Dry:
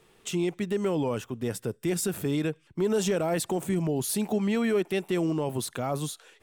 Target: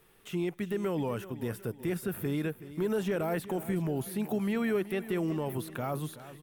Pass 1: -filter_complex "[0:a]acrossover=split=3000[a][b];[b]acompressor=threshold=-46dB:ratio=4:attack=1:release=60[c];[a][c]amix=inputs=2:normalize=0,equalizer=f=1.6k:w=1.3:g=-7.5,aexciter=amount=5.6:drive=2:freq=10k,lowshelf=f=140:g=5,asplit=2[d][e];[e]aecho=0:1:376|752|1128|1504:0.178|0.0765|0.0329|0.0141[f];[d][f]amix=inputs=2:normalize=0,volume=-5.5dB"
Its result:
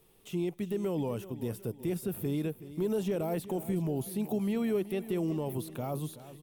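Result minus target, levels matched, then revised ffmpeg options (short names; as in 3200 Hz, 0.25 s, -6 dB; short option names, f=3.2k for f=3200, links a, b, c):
2000 Hz band -8.0 dB
-filter_complex "[0:a]acrossover=split=3000[a][b];[b]acompressor=threshold=-46dB:ratio=4:attack=1:release=60[c];[a][c]amix=inputs=2:normalize=0,equalizer=f=1.6k:w=1.3:g=4.5,aexciter=amount=5.6:drive=2:freq=10k,lowshelf=f=140:g=5,asplit=2[d][e];[e]aecho=0:1:376|752|1128|1504:0.178|0.0765|0.0329|0.0141[f];[d][f]amix=inputs=2:normalize=0,volume=-5.5dB"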